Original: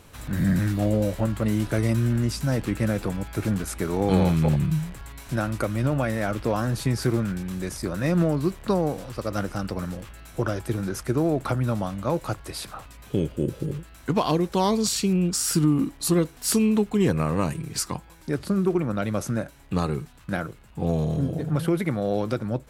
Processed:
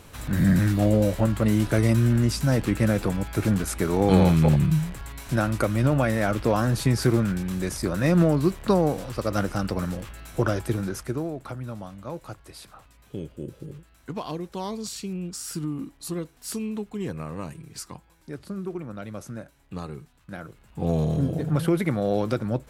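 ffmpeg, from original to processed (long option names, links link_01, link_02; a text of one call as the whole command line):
ffmpeg -i in.wav -af "volume=13.5dB,afade=type=out:start_time=10.56:duration=0.77:silence=0.237137,afade=type=in:start_time=20.37:duration=0.62:silence=0.281838" out.wav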